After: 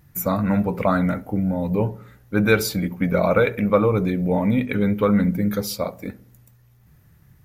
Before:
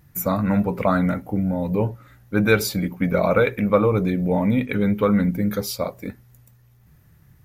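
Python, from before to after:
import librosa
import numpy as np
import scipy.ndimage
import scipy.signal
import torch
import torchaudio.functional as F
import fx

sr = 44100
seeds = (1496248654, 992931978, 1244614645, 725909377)

y = fx.echo_filtered(x, sr, ms=68, feedback_pct=53, hz=1100.0, wet_db=-18.0)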